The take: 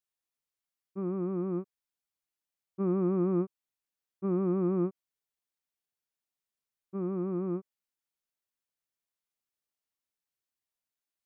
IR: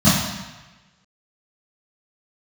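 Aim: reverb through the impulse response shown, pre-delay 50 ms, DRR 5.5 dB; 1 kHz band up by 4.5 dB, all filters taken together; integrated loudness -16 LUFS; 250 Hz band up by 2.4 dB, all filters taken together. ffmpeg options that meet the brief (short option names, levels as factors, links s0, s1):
-filter_complex "[0:a]equalizer=f=250:t=o:g=4,equalizer=f=1000:t=o:g=5.5,asplit=2[s0][s1];[1:a]atrim=start_sample=2205,adelay=50[s2];[s1][s2]afir=irnorm=-1:irlink=0,volume=0.0422[s3];[s0][s3]amix=inputs=2:normalize=0,volume=2.24"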